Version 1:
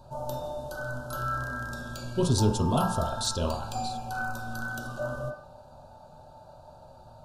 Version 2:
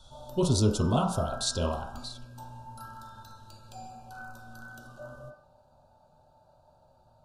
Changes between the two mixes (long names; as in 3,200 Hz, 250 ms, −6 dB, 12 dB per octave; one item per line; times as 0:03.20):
speech: entry −1.80 s
background −11.5 dB